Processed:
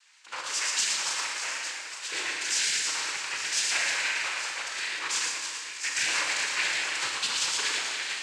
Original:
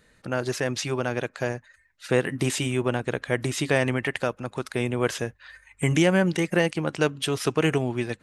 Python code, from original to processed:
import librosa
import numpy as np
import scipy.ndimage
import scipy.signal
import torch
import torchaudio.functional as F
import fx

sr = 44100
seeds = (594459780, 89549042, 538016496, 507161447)

y = fx.reverse_delay_fb(x, sr, ms=156, feedback_pct=58, wet_db=-8.0)
y = scipy.signal.sosfilt(scipy.signal.bessel(2, 1700.0, 'highpass', norm='mag', fs=sr, output='sos'), y)
y = fx.tilt_eq(y, sr, slope=4.0)
y = 10.0 ** (-20.5 / 20.0) * np.tanh(y / 10.0 ** (-20.5 / 20.0))
y = fx.echo_multitap(y, sr, ms=(115, 858), db=(-4.5, -10.5))
y = fx.noise_vocoder(y, sr, seeds[0], bands=8)
y = fx.rev_schroeder(y, sr, rt60_s=1.3, comb_ms=29, drr_db=1.5)
y = F.gain(torch.from_numpy(y), -1.5).numpy()